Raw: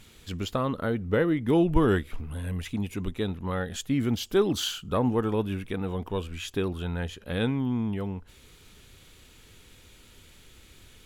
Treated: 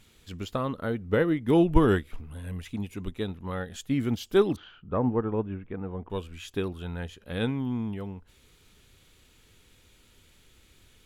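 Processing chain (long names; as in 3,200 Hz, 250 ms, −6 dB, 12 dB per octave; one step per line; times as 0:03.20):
0:04.56–0:06.10: Bessel low-pass filter 1,500 Hz, order 4
expander for the loud parts 1.5 to 1, over −34 dBFS
level +3 dB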